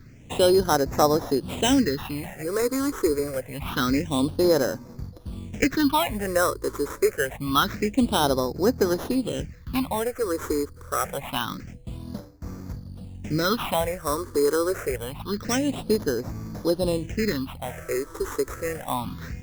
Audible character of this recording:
aliases and images of a low sample rate 4,600 Hz, jitter 0%
phaser sweep stages 6, 0.26 Hz, lowest notch 180–3,000 Hz

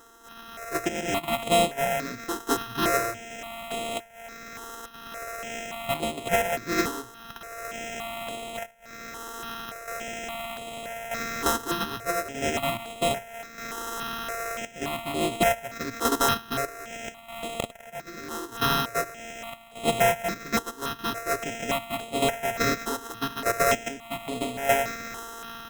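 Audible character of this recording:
a buzz of ramps at a fixed pitch in blocks of 64 samples
tremolo saw down 0.81 Hz, depth 60%
aliases and images of a low sample rate 4,600 Hz, jitter 0%
notches that jump at a steady rate 3.5 Hz 630–5,700 Hz

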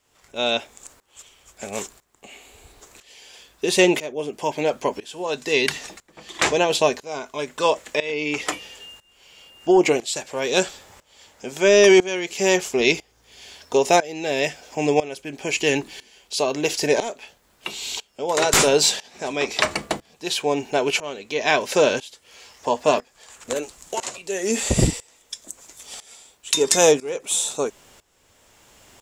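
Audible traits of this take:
a quantiser's noise floor 12 bits, dither triangular
tremolo saw up 1 Hz, depth 90%

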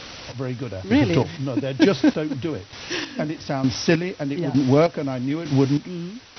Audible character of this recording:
a quantiser's noise floor 6 bits, dither triangular
chopped level 1.1 Hz, depth 65%, duty 35%
MP2

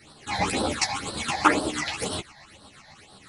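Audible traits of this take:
phaser sweep stages 8, 2 Hz, lowest notch 360–2,200 Hz
tremolo saw up 8.2 Hz, depth 55%
a shimmering, thickened sound

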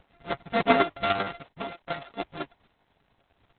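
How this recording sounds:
a buzz of ramps at a fixed pitch in blocks of 64 samples
chopped level 10 Hz, depth 60%, duty 25%
a quantiser's noise floor 12 bits, dither none
Opus

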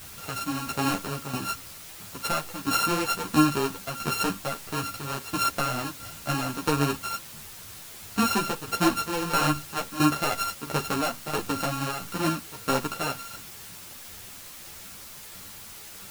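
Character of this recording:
a buzz of ramps at a fixed pitch in blocks of 32 samples
tremolo saw down 1.5 Hz, depth 75%
a quantiser's noise floor 8 bits, dither triangular
a shimmering, thickened sound

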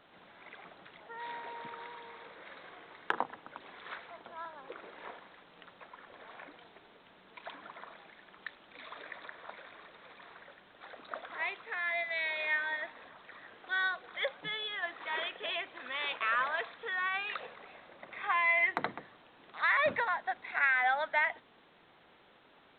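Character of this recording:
background noise floor −62 dBFS
spectral slope +1.5 dB per octave

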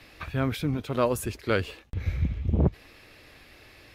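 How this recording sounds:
background noise floor −53 dBFS
spectral slope −6.5 dB per octave

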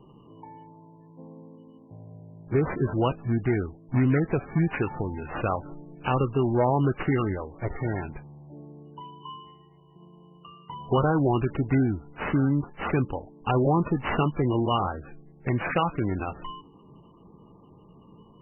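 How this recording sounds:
aliases and images of a low sample rate 4,000 Hz, jitter 0%
MP3

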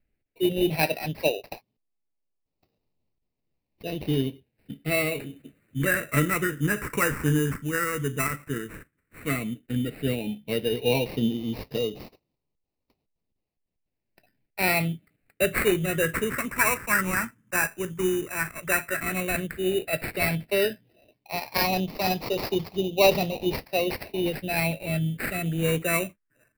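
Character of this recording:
aliases and images of a low sample rate 3,300 Hz, jitter 0%
phaser sweep stages 4, 0.1 Hz, lowest notch 690–1,500 Hz

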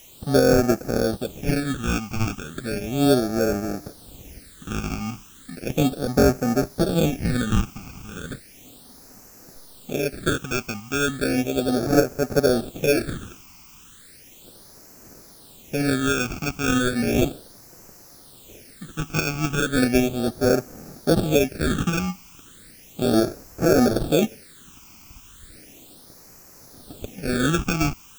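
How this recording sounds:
aliases and images of a low sample rate 1,000 Hz, jitter 0%
tremolo saw up 2.5 Hz, depth 35%
a quantiser's noise floor 8 bits, dither triangular
phaser sweep stages 8, 0.35 Hz, lowest notch 510–3,400 Hz

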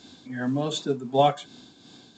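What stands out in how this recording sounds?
tremolo triangle 2.7 Hz, depth 60%
mu-law

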